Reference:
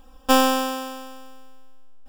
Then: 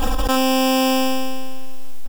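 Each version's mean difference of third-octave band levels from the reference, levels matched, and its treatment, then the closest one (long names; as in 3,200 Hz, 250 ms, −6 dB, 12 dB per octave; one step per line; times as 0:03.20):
9.0 dB: floating-point word with a short mantissa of 4 bits
on a send: ambience of single reflections 26 ms −14.5 dB, 73 ms −3 dB
on the sum: envelope flattener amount 100%
level −4.5 dB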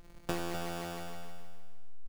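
15.0 dB: samples sorted by size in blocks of 256 samples
downward compressor 6 to 1, threshold −27 dBFS, peak gain reduction 16.5 dB
tuned comb filter 70 Hz, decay 0.46 s, harmonics all, mix 70%
multi-tap delay 102/254 ms −16.5/−8.5 dB
level +2 dB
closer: first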